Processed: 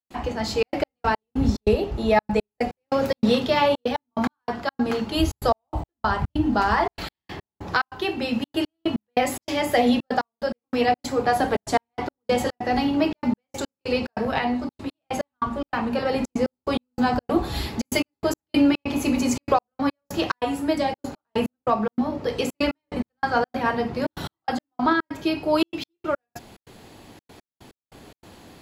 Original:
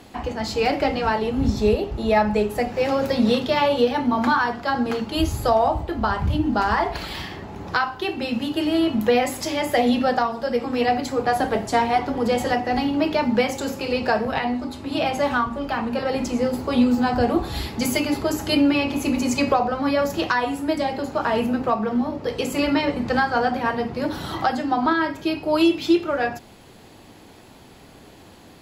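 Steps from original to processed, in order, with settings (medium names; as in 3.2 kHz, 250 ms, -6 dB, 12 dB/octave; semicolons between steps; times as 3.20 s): trance gate ".xxxxx.x..x..xx" 144 bpm -60 dB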